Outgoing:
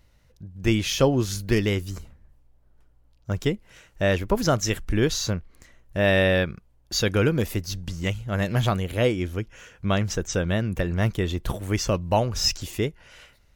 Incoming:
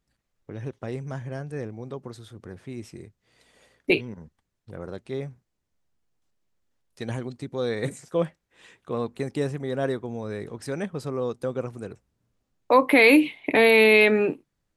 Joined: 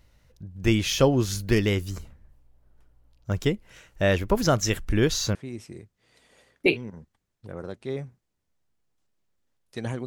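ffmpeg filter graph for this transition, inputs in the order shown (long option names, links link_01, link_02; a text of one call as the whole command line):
ffmpeg -i cue0.wav -i cue1.wav -filter_complex "[0:a]apad=whole_dur=10.06,atrim=end=10.06,atrim=end=5.352[link_01];[1:a]atrim=start=2.588:end=7.3[link_02];[link_01][link_02]acrossfade=duration=0.004:curve1=hsin:curve2=hsin" out.wav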